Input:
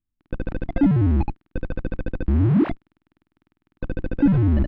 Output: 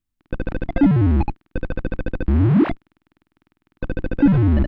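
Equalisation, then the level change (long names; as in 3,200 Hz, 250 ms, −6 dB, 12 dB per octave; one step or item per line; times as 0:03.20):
low-shelf EQ 490 Hz −3.5 dB
+5.5 dB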